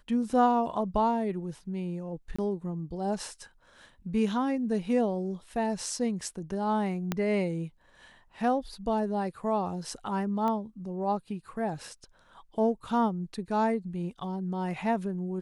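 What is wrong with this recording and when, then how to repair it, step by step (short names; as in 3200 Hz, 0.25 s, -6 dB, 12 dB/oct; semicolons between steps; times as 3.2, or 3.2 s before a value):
2.36–2.38 gap 25 ms
7.12 pop -14 dBFS
10.48 pop -20 dBFS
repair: de-click; interpolate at 2.36, 25 ms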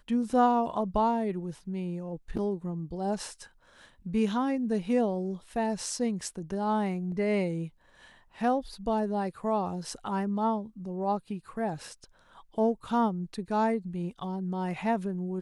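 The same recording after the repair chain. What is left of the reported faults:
7.12 pop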